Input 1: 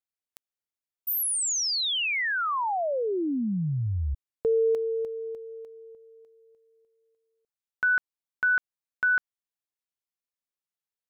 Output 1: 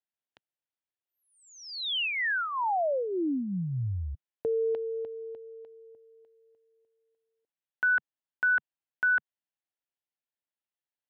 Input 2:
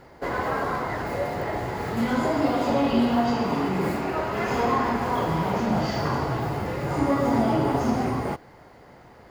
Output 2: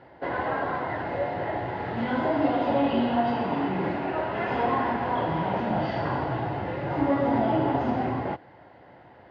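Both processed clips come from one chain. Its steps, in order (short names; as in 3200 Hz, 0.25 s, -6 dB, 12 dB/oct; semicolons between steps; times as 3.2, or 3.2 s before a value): speaker cabinet 110–3200 Hz, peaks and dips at 150 Hz -5 dB, 220 Hz -7 dB, 430 Hz -7 dB, 1200 Hz -9 dB, 2300 Hz -6 dB; gain +1.5 dB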